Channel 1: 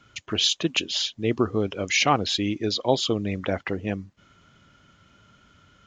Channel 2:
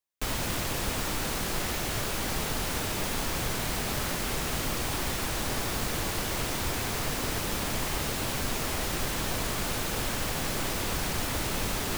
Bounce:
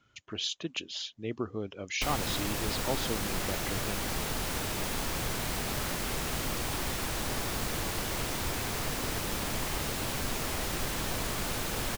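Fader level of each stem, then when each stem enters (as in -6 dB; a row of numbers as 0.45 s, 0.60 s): -11.5 dB, -2.5 dB; 0.00 s, 1.80 s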